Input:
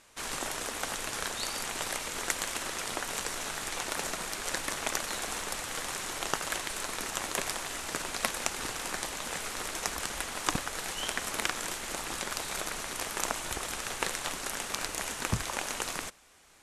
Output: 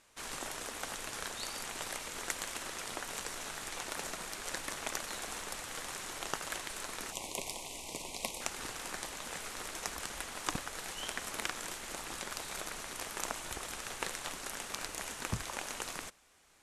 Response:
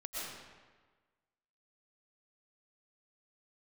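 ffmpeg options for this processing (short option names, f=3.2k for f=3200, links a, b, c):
-filter_complex "[0:a]asettb=1/sr,asplit=3[a][b][c];[a]atrim=end=7.124[d];[b]atrim=start=7.12:end=8.41,asetpts=PTS-STARTPTS,afade=t=in:d=0.004:c=qsin,afade=t=out:st=1.286:d=0.004:c=qsin,asuperstop=centerf=1500:order=8:qfactor=1.4[e];[c]atrim=start=8.406[f];[d][e]acrossfade=d=0.004:c1=hsin:c2=qsin[g];[g][f]acrossfade=d=0.004:c1=qsin:c2=hsin,volume=-6dB"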